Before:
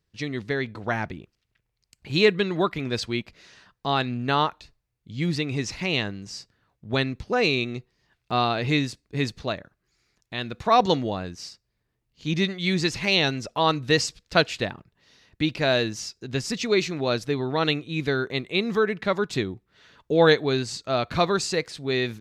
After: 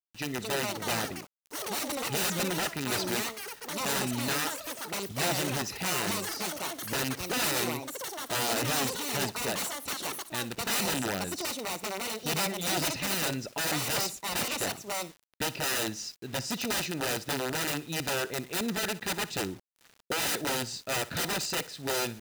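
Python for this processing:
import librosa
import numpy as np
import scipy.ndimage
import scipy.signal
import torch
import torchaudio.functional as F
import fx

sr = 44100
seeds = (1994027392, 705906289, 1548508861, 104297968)

p1 = (np.mod(10.0 ** (20.5 / 20.0) * x + 1.0, 2.0) - 1.0) / 10.0 ** (20.5 / 20.0)
p2 = fx.notch_comb(p1, sr, f0_hz=1100.0)
p3 = fx.echo_pitch(p2, sr, ms=299, semitones=7, count=3, db_per_echo=-3.0)
p4 = p3 + fx.echo_feedback(p3, sr, ms=60, feedback_pct=30, wet_db=-18, dry=0)
p5 = fx.quant_dither(p4, sr, seeds[0], bits=8, dither='none')
y = p5 * librosa.db_to_amplitude(-3.0)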